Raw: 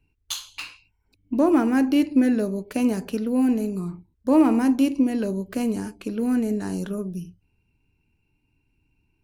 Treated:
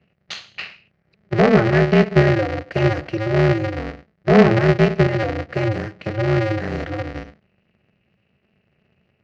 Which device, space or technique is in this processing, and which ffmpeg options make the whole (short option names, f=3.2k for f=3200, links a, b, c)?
ring modulator pedal into a guitar cabinet: -af "aeval=exprs='val(0)*sgn(sin(2*PI*110*n/s))':c=same,highpass=84,equalizer=f=190:t=q:w=4:g=3,equalizer=f=290:t=q:w=4:g=-7,equalizer=f=630:t=q:w=4:g=3,equalizer=f=960:t=q:w=4:g=-9,equalizer=f=1.9k:t=q:w=4:g=6,equalizer=f=3.5k:t=q:w=4:g=-8,lowpass=f=4.3k:w=0.5412,lowpass=f=4.3k:w=1.3066,volume=5dB"